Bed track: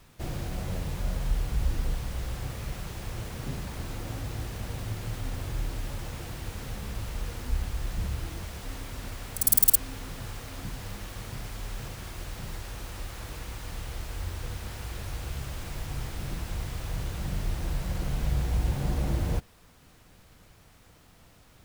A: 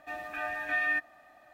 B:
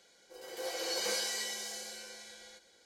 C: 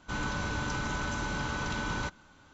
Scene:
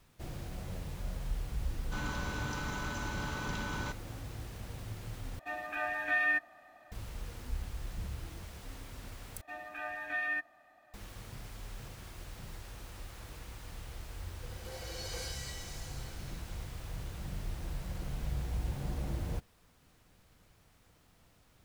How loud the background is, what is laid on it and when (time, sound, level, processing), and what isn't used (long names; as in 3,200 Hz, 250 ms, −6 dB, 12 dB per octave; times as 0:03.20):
bed track −8.5 dB
0:01.83: mix in C −5 dB
0:05.39: overwrite with A −0.5 dB
0:09.41: overwrite with A −5.5 dB
0:14.08: mix in B −8.5 dB